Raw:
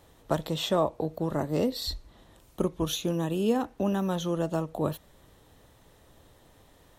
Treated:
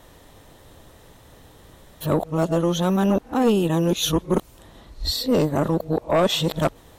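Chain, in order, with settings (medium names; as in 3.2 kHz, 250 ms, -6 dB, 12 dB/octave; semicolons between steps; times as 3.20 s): reverse the whole clip; sine folder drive 5 dB, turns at -12 dBFS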